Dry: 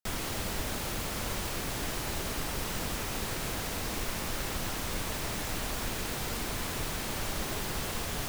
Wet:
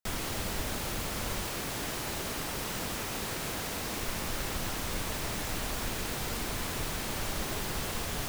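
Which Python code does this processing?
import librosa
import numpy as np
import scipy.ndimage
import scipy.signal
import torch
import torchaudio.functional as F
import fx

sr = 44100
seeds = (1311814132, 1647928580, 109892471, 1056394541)

y = fx.low_shelf(x, sr, hz=66.0, db=-9.5, at=(1.44, 4.03))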